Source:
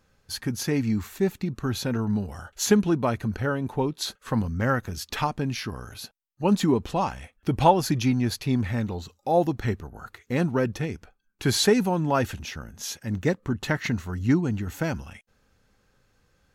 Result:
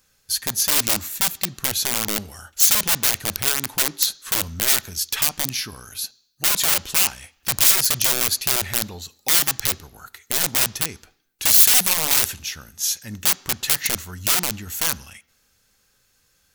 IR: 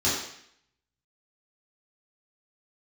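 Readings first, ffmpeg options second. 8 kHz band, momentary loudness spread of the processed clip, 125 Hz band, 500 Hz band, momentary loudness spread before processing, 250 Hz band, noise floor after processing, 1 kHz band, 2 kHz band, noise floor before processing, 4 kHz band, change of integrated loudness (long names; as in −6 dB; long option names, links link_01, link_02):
+17.0 dB, 12 LU, −10.0 dB, −9.5 dB, 13 LU, −12.5 dB, −64 dBFS, −3.5 dB, +6.5 dB, −68 dBFS, +11.5 dB, +7.5 dB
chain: -filter_complex "[0:a]aeval=exprs='(mod(10*val(0)+1,2)-1)/10':channel_layout=same,crystalizer=i=8:c=0,asplit=2[link_01][link_02];[1:a]atrim=start_sample=2205,lowpass=6200[link_03];[link_02][link_03]afir=irnorm=-1:irlink=0,volume=-32dB[link_04];[link_01][link_04]amix=inputs=2:normalize=0,volume=-6dB"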